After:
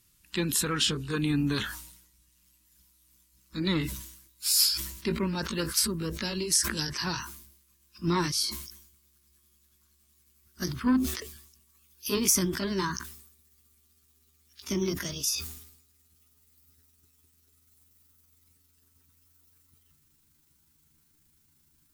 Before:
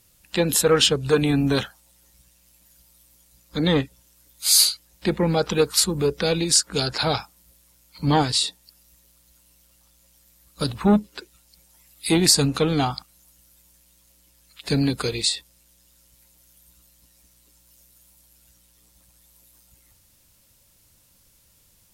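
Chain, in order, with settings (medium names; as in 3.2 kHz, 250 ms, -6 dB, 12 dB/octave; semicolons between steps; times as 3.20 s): pitch bend over the whole clip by +7.5 st starting unshifted; high-order bell 620 Hz -13 dB 1 oct; decay stretcher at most 69 dB/s; trim -6 dB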